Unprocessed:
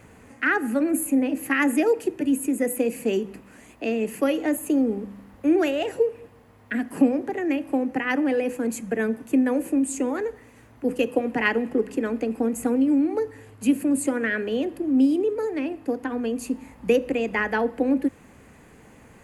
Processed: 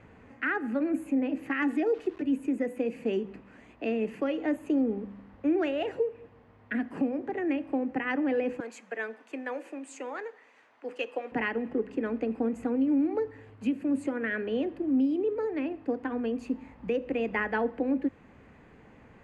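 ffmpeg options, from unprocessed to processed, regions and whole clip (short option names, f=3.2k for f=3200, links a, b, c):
-filter_complex "[0:a]asettb=1/sr,asplit=3[a][b][c];[a]atrim=end=1.624[d];[b]atrim=start=1.62:end=2.22,asetpts=PTS-STARTPTS,afade=t=in:d=0.004:c=qsin,afade=t=out:st=0.596:d=0.004:c=qsin,aecho=1:1:2.7:0.68,atrim=end_sample=26460,aeval=exprs='val(0)*gte(abs(val(0)),0.0119)':c=same[e];[c]atrim=start=2.216[f];[d][e]acrossfade=d=0.004:c1=hsin:c2=qsin[g];[g][f]acrossfade=d=0.004:c1=qsin:c2=hsin,asettb=1/sr,asplit=3[h][i][j];[h]atrim=end=8.604[k];[i]atrim=start=8.6:end=11.32,asetpts=PTS-STARTPTS,afade=t=in:d=0.004:c=qsin,afade=t=out:st=2.716:d=0.004:c=qsin,highpass=650,lowpass=6.9k,aemphasis=mode=production:type=50fm[l];[j]atrim=start=11.316[m];[k][l]acrossfade=d=0.004:c1=hsin:c2=qsin[n];[n][m]acrossfade=d=0.004:c1=qsin:c2=hsin,lowpass=3.1k,alimiter=limit=-15dB:level=0:latency=1:release=328,volume=-4dB"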